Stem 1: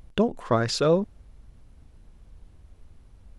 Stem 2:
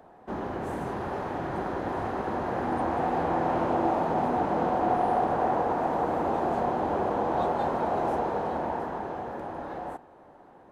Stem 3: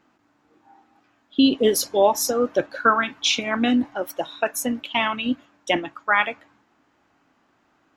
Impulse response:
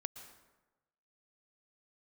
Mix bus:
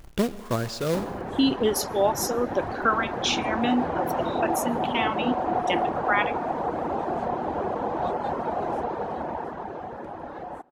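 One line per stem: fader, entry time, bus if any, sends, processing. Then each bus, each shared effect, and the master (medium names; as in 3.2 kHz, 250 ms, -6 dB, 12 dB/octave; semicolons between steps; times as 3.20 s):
-7.5 dB, 0.00 s, send -4 dB, bass shelf 360 Hz +5.5 dB; companded quantiser 4-bit; auto duck -15 dB, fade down 1.90 s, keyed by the third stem
+0.5 dB, 0.65 s, send -18 dB, reverb removal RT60 0.7 s; treble shelf 11 kHz -10 dB
-6.0 dB, 0.00 s, send -15.5 dB, none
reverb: on, RT60 1.1 s, pre-delay 107 ms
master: none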